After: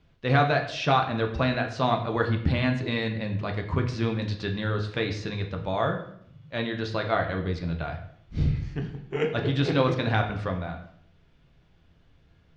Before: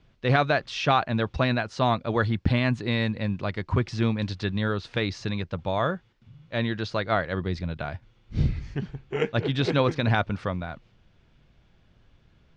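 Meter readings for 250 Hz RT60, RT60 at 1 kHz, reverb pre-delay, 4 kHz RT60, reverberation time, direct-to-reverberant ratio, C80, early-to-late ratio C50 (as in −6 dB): 0.80 s, 0.65 s, 7 ms, 0.60 s, 0.65 s, 3.0 dB, 12.0 dB, 9.0 dB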